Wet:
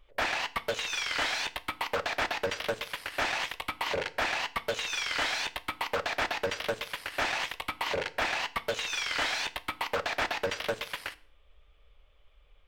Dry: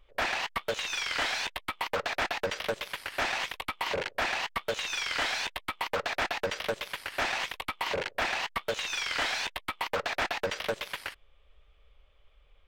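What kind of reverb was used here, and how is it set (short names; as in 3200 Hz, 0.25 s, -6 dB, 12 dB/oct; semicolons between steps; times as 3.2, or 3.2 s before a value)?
FDN reverb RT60 0.48 s, low-frequency decay 1.3×, high-frequency decay 0.95×, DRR 13.5 dB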